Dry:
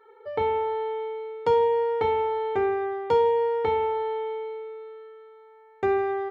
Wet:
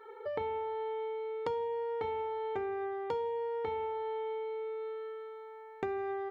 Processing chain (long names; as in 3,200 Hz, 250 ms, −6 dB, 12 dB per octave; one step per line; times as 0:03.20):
downward compressor 4 to 1, threshold −40 dBFS, peak gain reduction 18.5 dB
level +3.5 dB